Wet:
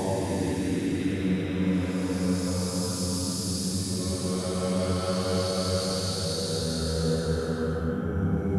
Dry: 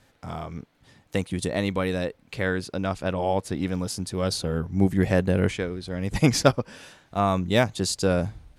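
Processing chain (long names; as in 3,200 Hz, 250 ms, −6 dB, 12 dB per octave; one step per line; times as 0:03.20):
extreme stretch with random phases 6.8×, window 0.50 s, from 0:03.45
speech leveller 2 s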